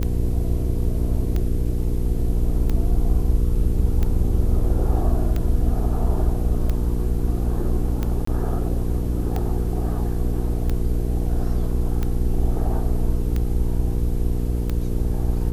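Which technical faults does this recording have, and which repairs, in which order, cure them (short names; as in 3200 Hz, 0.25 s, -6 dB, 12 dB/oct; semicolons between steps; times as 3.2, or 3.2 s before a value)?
hum 60 Hz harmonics 8 -24 dBFS
tick 45 rpm -13 dBFS
8.25–8.27 gap 24 ms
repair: de-click; de-hum 60 Hz, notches 8; interpolate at 8.25, 24 ms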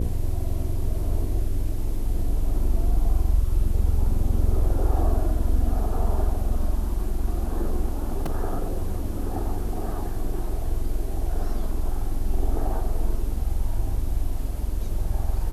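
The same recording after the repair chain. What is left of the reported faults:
none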